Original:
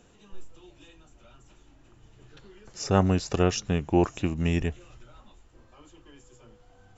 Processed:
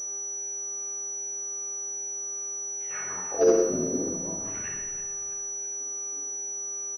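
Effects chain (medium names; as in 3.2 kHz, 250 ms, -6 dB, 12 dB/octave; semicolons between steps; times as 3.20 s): local Wiener filter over 41 samples; bass shelf 180 Hz -6.5 dB; waveshaping leveller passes 3; in parallel at -2.5 dB: compression, threshold -29 dBFS, peak gain reduction 14.5 dB; on the sum: chorus voices 6, 0.6 Hz, delay 23 ms, depth 1.8 ms; wah-wah 0.46 Hz 240–2200 Hz, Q 12; mains buzz 400 Hz, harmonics 27, -57 dBFS -8 dB/octave; harmony voices -7 st -15 dB, +3 st -13 dB, +7 st -5 dB; hard clipper -15.5 dBFS, distortion -19 dB; frequency-shifting echo 326 ms, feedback 48%, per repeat -82 Hz, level -14.5 dB; Schroeder reverb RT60 1.1 s, DRR -0.5 dB; class-D stage that switches slowly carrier 5.9 kHz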